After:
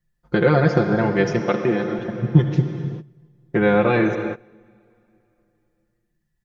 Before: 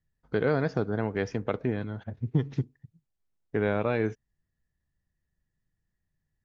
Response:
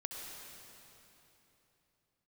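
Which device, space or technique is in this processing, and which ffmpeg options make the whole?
keyed gated reverb: -filter_complex "[0:a]asplit=3[a][b][c];[1:a]atrim=start_sample=2205[d];[b][d]afir=irnorm=-1:irlink=0[e];[c]apad=whole_len=284421[f];[e][f]sidechaingate=range=-21dB:threshold=-59dB:ratio=16:detection=peak,volume=2.5dB[g];[a][g]amix=inputs=2:normalize=0,asettb=1/sr,asplit=3[h][i][j];[h]atrim=end=1.394[k];[i]atrim=start=1.39:end=1.99,asetpts=PTS-STARTPTS,afade=t=in:d=0.004:c=qsin,afade=t=out:st=0.596:d=0.004:c=qsin,highpass=180[l];[j]atrim=start=1.986[m];[k][l]acrossfade=d=0.004:c1=hsin:c2=qsin[n];[n][m]acrossfade=d=0.004:c1=qsin:c2=hsin,aecho=1:1:5.7:0.95,volume=2dB"

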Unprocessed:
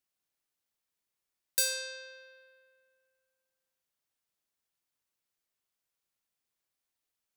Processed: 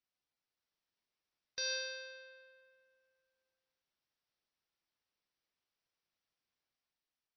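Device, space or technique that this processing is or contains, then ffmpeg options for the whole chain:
low-bitrate web radio: -af "dynaudnorm=f=140:g=9:m=3dB,alimiter=limit=-18.5dB:level=0:latency=1:release=115,volume=-3.5dB" -ar 24000 -c:a libmp3lame -b:a 24k

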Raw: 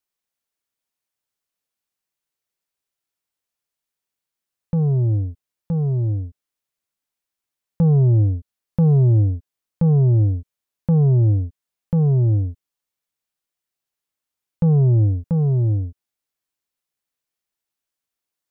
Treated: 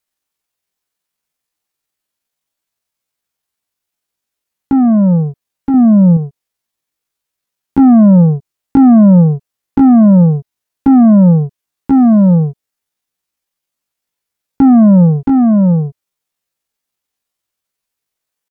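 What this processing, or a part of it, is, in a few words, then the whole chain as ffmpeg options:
chipmunk voice: -filter_complex "[0:a]asetrate=72056,aresample=44100,atempo=0.612027,asettb=1/sr,asplit=3[a][b][c];[a]atrim=end=5.744[d];[b]atrim=start=5.74:end=6.17,asetpts=PTS-STARTPTS,afade=t=in:d=0.004:c=qsin,afade=t=out:st=0.426:d=0.004:c=qsin,lowshelf=f=330:g=6.5[e];[c]atrim=start=6.166[f];[d][e]acrossfade=d=0.004:c1=hsin:c2=qsin[g];[g][f]acrossfade=d=0.004:c1=qsin:c2=hsin,volume=9dB"

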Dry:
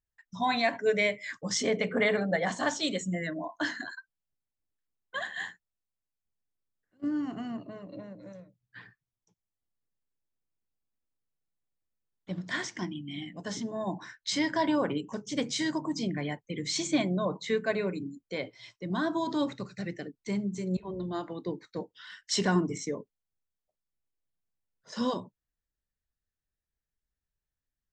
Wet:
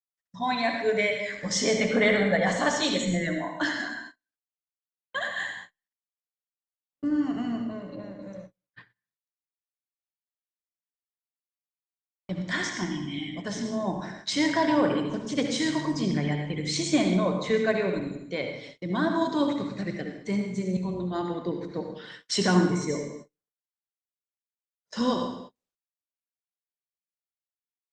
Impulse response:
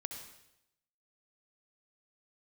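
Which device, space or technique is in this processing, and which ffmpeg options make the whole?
speakerphone in a meeting room: -filter_complex "[1:a]atrim=start_sample=2205[a];[0:a][a]afir=irnorm=-1:irlink=0,dynaudnorm=f=530:g=5:m=4dB,agate=range=-38dB:threshold=-45dB:ratio=16:detection=peak,volume=2.5dB" -ar 48000 -c:a libopus -b:a 32k

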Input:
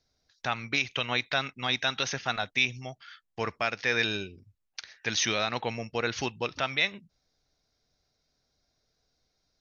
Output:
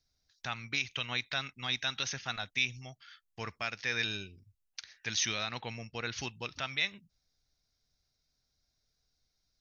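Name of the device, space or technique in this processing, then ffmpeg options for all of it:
smiley-face EQ: -filter_complex "[0:a]lowshelf=f=89:g=5.5,equalizer=f=500:t=o:w=2.2:g=-6.5,highshelf=f=5.2k:g=5.5,asettb=1/sr,asplit=3[a][b][c];[a]atrim=end=5.434[d];[b]atrim=start=5.43:end=6.18,asetpts=PTS-STARTPTS,afade=t=in:d=0.004:c=qsin,afade=t=out:st=0.746:d=0.004:c=qsin,lowpass=6.4k[e];[c]atrim=start=6.176[f];[d][e]acrossfade=d=0.004:c1=hsin:c2=qsin[g];[g][f]acrossfade=d=0.004:c1=qsin:c2=hsin,volume=-5.5dB"

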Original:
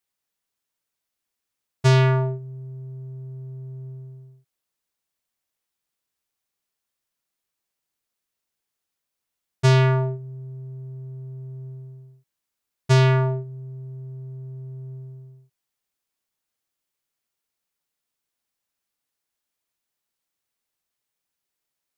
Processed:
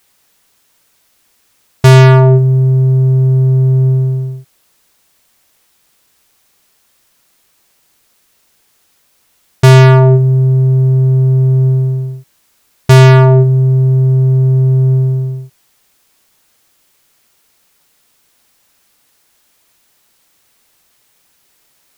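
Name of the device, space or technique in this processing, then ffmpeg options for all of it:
loud club master: -af "acompressor=threshold=-21dB:ratio=2.5,asoftclip=type=hard:threshold=-19.5dB,alimiter=level_in=28dB:limit=-1dB:release=50:level=0:latency=1,volume=-1dB"

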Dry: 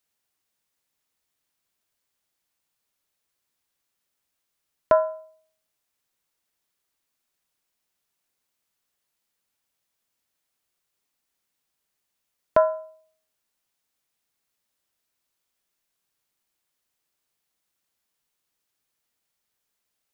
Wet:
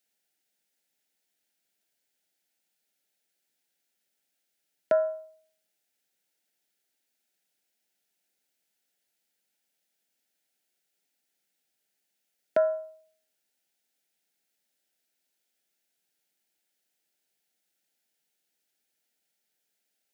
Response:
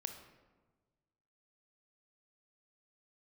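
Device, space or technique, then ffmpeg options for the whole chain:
PA system with an anti-feedback notch: -af "highpass=f=160:w=0.5412,highpass=f=160:w=1.3066,asuperstop=centerf=1100:order=4:qfactor=2.3,alimiter=limit=-14dB:level=0:latency=1:release=161"

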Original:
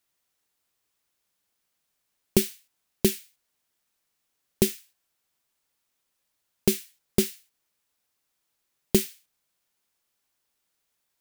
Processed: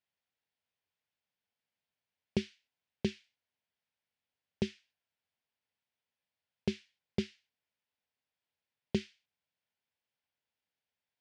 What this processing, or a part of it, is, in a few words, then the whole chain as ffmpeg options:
guitar cabinet: -af "highpass=87,equalizer=f=87:t=q:w=4:g=7,equalizer=f=340:t=q:w=4:g=-9,equalizer=f=1.2k:t=q:w=4:g=-8,equalizer=f=4k:t=q:w=4:g=-4,lowpass=f=4.4k:w=0.5412,lowpass=f=4.4k:w=1.3066,volume=-8dB"

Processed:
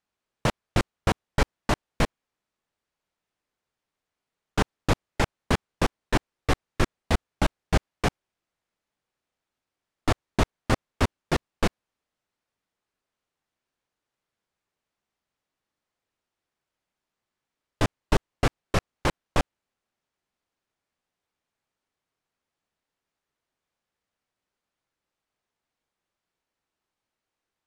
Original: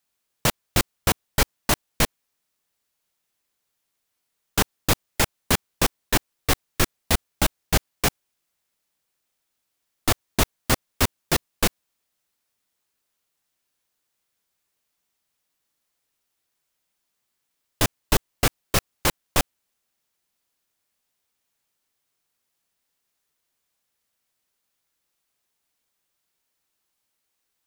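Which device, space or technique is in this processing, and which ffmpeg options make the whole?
through cloth: -af "lowpass=8.8k,highshelf=f=3k:g=-13"

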